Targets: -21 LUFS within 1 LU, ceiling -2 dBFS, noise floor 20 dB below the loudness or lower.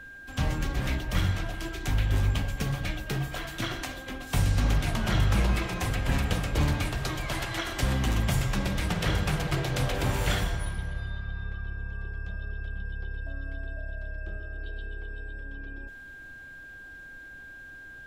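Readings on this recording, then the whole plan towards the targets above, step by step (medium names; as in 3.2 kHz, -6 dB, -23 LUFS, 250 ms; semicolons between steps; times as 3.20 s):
steady tone 1.6 kHz; tone level -43 dBFS; loudness -30.5 LUFS; peak level -13.5 dBFS; loudness target -21.0 LUFS
-> band-stop 1.6 kHz, Q 30; trim +9.5 dB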